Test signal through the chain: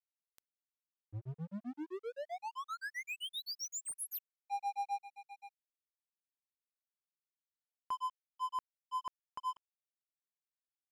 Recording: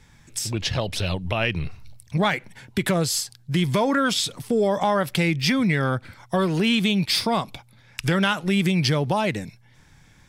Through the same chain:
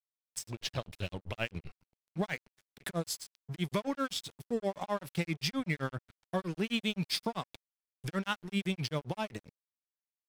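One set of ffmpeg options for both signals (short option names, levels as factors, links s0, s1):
-af "tremolo=f=7.7:d=0.99,aeval=exprs='sgn(val(0))*max(abs(val(0))-0.0112,0)':c=same,volume=0.398"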